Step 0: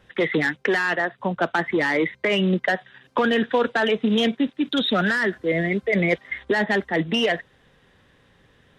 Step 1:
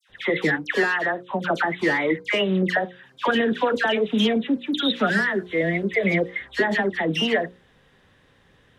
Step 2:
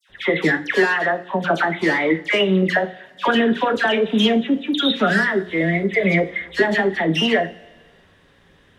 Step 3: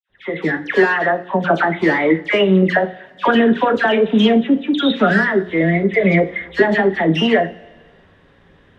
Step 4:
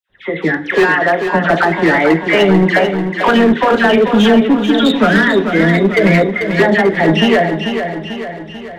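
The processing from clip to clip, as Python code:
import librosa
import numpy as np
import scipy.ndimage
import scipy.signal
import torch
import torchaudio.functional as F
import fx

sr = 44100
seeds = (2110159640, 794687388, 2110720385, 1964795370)

y1 = fx.hum_notches(x, sr, base_hz=60, count=9)
y1 = fx.dispersion(y1, sr, late='lows', ms=97.0, hz=1800.0)
y2 = fx.rev_double_slope(y1, sr, seeds[0], early_s=0.29, late_s=1.6, knee_db=-19, drr_db=7.5)
y2 = y2 * 10.0 ** (3.0 / 20.0)
y3 = fx.fade_in_head(y2, sr, length_s=0.83)
y3 = fx.lowpass(y3, sr, hz=1800.0, slope=6)
y3 = y3 * 10.0 ** (4.5 / 20.0)
y4 = np.clip(y3, -10.0 ** (-10.0 / 20.0), 10.0 ** (-10.0 / 20.0))
y4 = fx.echo_feedback(y4, sr, ms=441, feedback_pct=53, wet_db=-7.5)
y4 = y4 * 10.0 ** (4.0 / 20.0)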